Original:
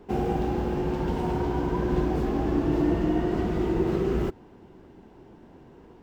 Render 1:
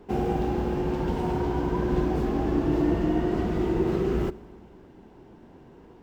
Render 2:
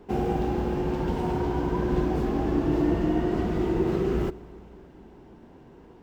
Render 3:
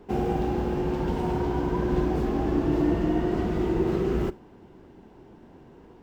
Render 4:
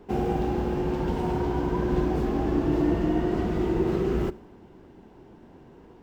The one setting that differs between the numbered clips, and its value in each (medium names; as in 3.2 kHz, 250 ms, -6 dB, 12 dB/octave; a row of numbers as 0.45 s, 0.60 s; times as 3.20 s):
Schroeder reverb, RT60: 1.8 s, 3.8 s, 0.3 s, 0.8 s